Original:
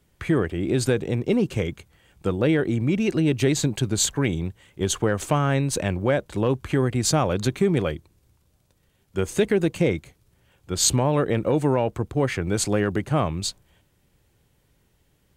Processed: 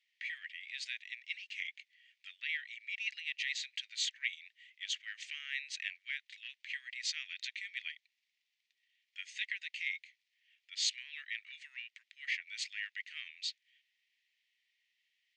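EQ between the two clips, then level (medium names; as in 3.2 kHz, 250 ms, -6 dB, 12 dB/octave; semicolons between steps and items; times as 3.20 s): Gaussian low-pass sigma 2.1 samples; Chebyshev high-pass 1.9 kHz, order 6; 0.0 dB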